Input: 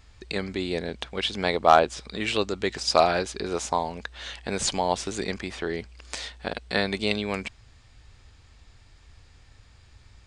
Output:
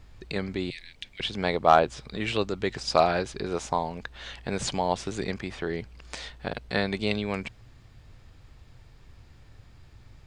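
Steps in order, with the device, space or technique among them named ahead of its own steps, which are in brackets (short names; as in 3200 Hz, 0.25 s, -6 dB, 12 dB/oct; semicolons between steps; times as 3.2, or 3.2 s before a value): 0.7–1.2 steep high-pass 1900 Hz 48 dB/oct; car interior (bell 130 Hz +9 dB 0.61 oct; high shelf 4900 Hz -7.5 dB; brown noise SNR 24 dB); gain -1.5 dB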